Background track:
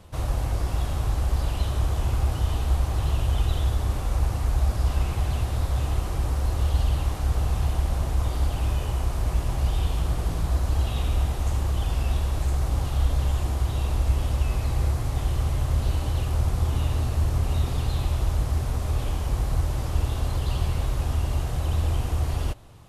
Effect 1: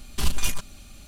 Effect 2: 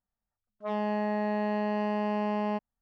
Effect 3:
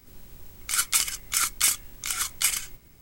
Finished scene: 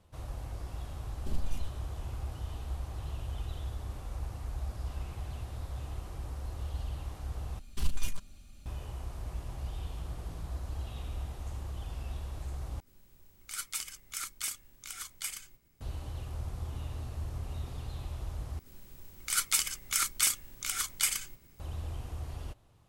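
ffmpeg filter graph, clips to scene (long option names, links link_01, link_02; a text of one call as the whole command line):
ffmpeg -i bed.wav -i cue0.wav -i cue1.wav -i cue2.wav -filter_complex "[1:a]asplit=2[link_01][link_02];[3:a]asplit=2[link_03][link_04];[0:a]volume=-14.5dB[link_05];[link_01]afwtdn=0.0316[link_06];[link_02]lowshelf=frequency=170:gain=8[link_07];[link_05]asplit=4[link_08][link_09][link_10][link_11];[link_08]atrim=end=7.594[link_12];[link_07]atrim=end=1.07,asetpts=PTS-STARTPTS,volume=-13.5dB[link_13];[link_09]atrim=start=8.656:end=12.804[link_14];[link_03]atrim=end=3.01,asetpts=PTS-STARTPTS,volume=-14dB[link_15];[link_10]atrim=start=15.806:end=18.594[link_16];[link_04]atrim=end=3.01,asetpts=PTS-STARTPTS,volume=-5dB[link_17];[link_11]atrim=start=21.596[link_18];[link_06]atrim=end=1.07,asetpts=PTS-STARTPTS,volume=-8.5dB,afade=type=in:duration=0.004:curve=hsin,afade=type=out:start_time=1.066:duration=0.004:curve=hsin,adelay=1080[link_19];[link_12][link_13]acrossfade=duration=0.004:curve1=hsin:curve2=hsin[link_20];[link_20][link_14]acrossfade=duration=0.004:curve1=hsin:curve2=hsin[link_21];[link_21][link_15]acrossfade=duration=0.004:curve1=hsin:curve2=hsin[link_22];[link_22][link_16]acrossfade=duration=0.004:curve1=hsin:curve2=hsin[link_23];[link_23][link_17]acrossfade=duration=0.004:curve1=hsin:curve2=hsin[link_24];[link_24][link_18]acrossfade=duration=0.004:curve1=hsin:curve2=hsin[link_25];[link_25][link_19]amix=inputs=2:normalize=0" out.wav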